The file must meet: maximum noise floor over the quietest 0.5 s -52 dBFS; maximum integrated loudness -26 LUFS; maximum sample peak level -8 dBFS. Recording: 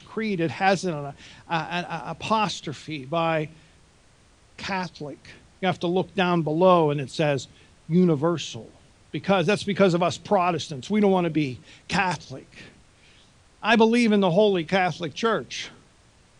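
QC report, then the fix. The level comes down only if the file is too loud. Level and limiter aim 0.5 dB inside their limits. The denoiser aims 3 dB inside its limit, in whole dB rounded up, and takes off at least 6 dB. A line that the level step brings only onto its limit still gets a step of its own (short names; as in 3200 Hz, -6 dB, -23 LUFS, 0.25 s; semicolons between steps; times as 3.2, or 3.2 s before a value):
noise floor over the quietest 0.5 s -57 dBFS: OK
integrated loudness -24.0 LUFS: fail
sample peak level -4.5 dBFS: fail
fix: gain -2.5 dB; limiter -8.5 dBFS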